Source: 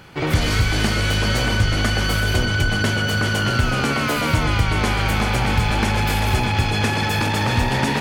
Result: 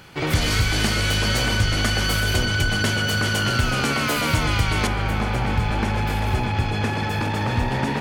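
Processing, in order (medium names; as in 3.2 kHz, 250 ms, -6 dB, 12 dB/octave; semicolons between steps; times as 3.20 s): treble shelf 2.6 kHz +5 dB, from 4.87 s -8 dB; trim -2.5 dB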